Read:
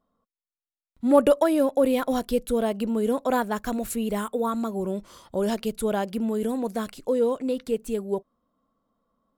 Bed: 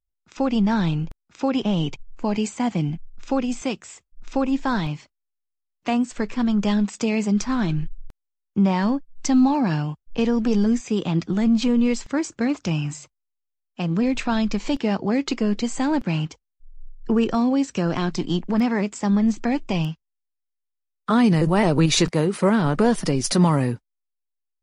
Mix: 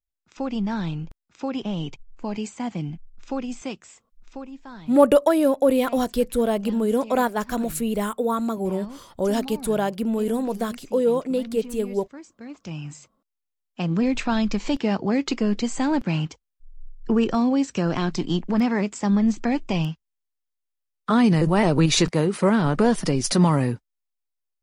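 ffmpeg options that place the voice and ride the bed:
ffmpeg -i stem1.wav -i stem2.wav -filter_complex "[0:a]adelay=3850,volume=2.5dB[link_01];[1:a]volume=11.5dB,afade=type=out:start_time=3.84:duration=0.68:silence=0.251189,afade=type=in:start_time=12.44:duration=1.27:silence=0.133352[link_02];[link_01][link_02]amix=inputs=2:normalize=0" out.wav

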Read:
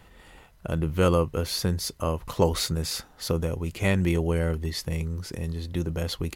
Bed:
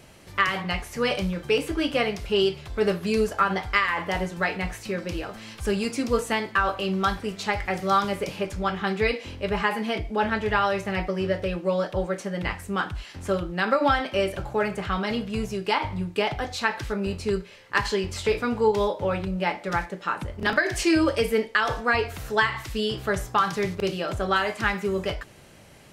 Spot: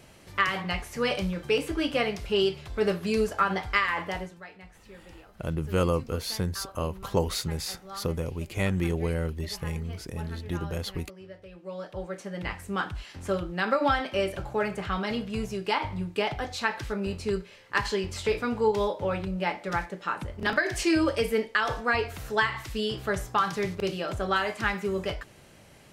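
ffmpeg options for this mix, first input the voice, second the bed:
ffmpeg -i stem1.wav -i stem2.wav -filter_complex "[0:a]adelay=4750,volume=-3.5dB[link_01];[1:a]volume=14.5dB,afade=type=out:start_time=3.97:duration=0.44:silence=0.133352,afade=type=in:start_time=11.5:duration=1.26:silence=0.141254[link_02];[link_01][link_02]amix=inputs=2:normalize=0" out.wav

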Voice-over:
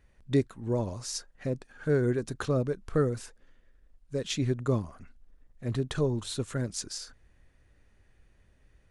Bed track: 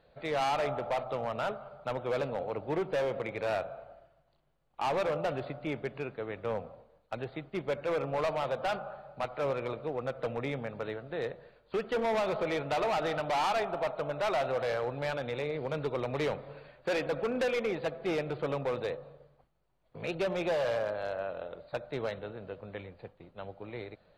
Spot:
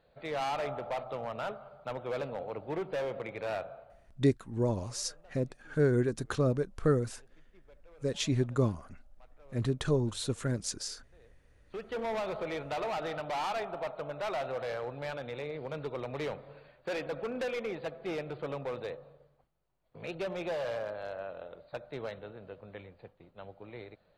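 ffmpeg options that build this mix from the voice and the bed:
ffmpeg -i stem1.wav -i stem2.wav -filter_complex "[0:a]adelay=3900,volume=-0.5dB[link_01];[1:a]volume=19.5dB,afade=type=out:start_time=3.72:duration=0.71:silence=0.0630957,afade=type=in:start_time=11.4:duration=0.63:silence=0.0707946[link_02];[link_01][link_02]amix=inputs=2:normalize=0" out.wav

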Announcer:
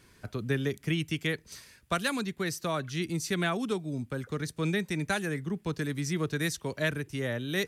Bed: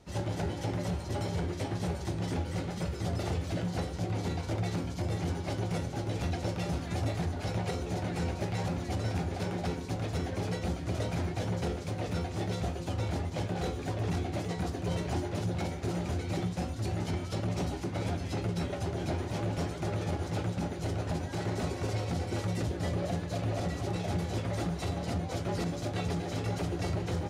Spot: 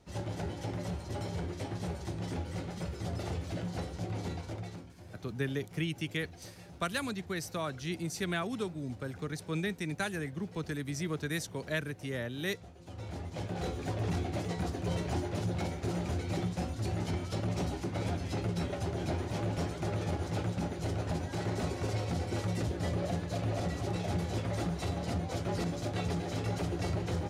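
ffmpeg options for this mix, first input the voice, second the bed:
ffmpeg -i stem1.wav -i stem2.wav -filter_complex "[0:a]adelay=4900,volume=-4.5dB[link_01];[1:a]volume=13.5dB,afade=type=out:start_time=4.26:duration=0.67:silence=0.188365,afade=type=in:start_time=12.75:duration=1.1:silence=0.133352[link_02];[link_01][link_02]amix=inputs=2:normalize=0" out.wav

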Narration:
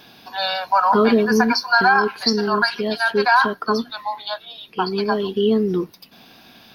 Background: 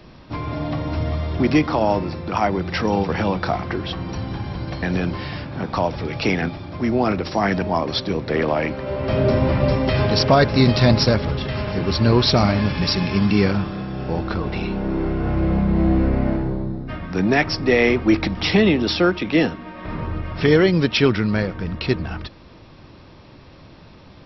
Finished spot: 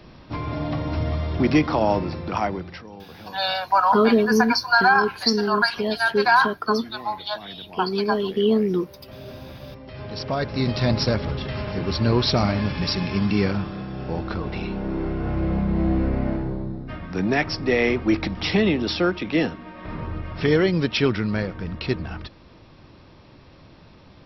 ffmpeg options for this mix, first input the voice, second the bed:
ffmpeg -i stem1.wav -i stem2.wav -filter_complex "[0:a]adelay=3000,volume=-1.5dB[link_01];[1:a]volume=16dB,afade=type=out:start_time=2.24:duration=0.6:silence=0.1,afade=type=in:start_time=9.88:duration=1.35:silence=0.133352[link_02];[link_01][link_02]amix=inputs=2:normalize=0" out.wav

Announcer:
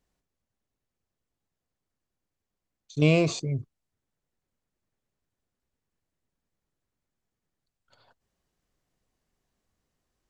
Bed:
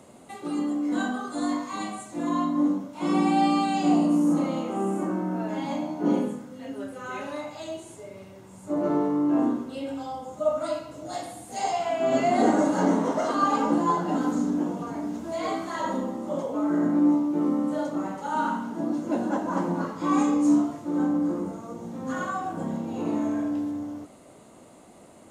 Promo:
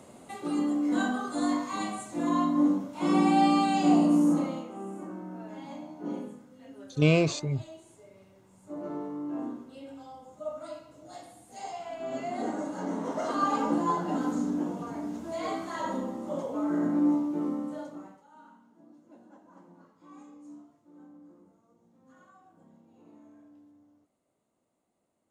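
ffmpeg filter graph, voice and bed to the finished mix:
ffmpeg -i stem1.wav -i stem2.wav -filter_complex "[0:a]adelay=4000,volume=-1dB[link_01];[1:a]volume=7.5dB,afade=type=out:start_time=4.23:duration=0.46:silence=0.266073,afade=type=in:start_time=12.86:duration=0.5:silence=0.398107,afade=type=out:start_time=17.19:duration=1.07:silence=0.0630957[link_02];[link_01][link_02]amix=inputs=2:normalize=0" out.wav

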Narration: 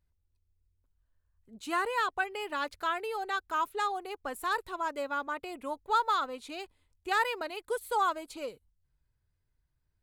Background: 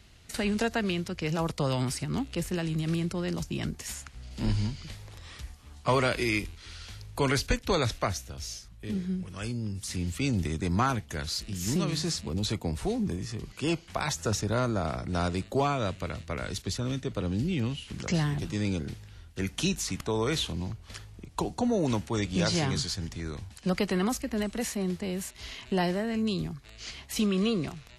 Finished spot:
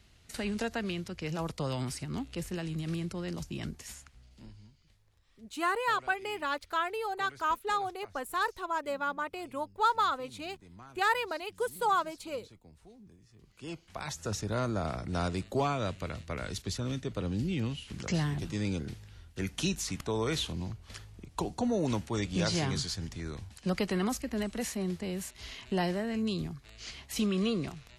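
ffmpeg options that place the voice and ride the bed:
ffmpeg -i stem1.wav -i stem2.wav -filter_complex "[0:a]adelay=3900,volume=0.5dB[link_01];[1:a]volume=17dB,afade=type=out:start_time=3.69:duration=0.82:silence=0.1,afade=type=in:start_time=13.32:duration=1.46:silence=0.0749894[link_02];[link_01][link_02]amix=inputs=2:normalize=0" out.wav

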